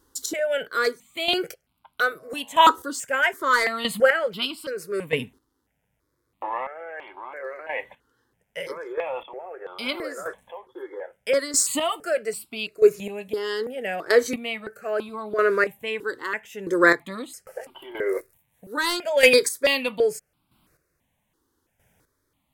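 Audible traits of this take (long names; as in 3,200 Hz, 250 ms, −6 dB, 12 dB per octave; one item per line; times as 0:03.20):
chopped level 0.78 Hz, depth 65%, duty 20%
notches that jump at a steady rate 3 Hz 650–1,800 Hz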